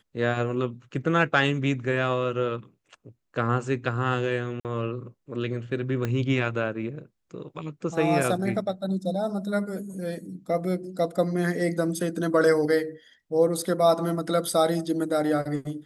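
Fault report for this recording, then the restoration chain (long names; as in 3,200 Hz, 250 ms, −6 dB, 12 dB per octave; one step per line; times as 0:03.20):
0:04.60–0:04.65: drop-out 48 ms
0:06.05: click −15 dBFS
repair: click removal
repair the gap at 0:04.60, 48 ms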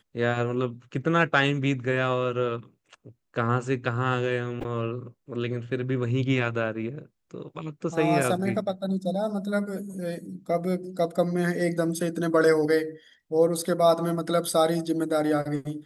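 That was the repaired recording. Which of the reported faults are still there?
0:06.05: click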